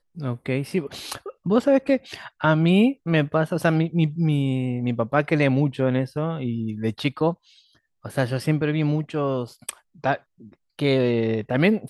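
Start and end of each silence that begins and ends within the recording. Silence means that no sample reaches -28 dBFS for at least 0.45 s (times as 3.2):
7.33–8.06
10.16–10.79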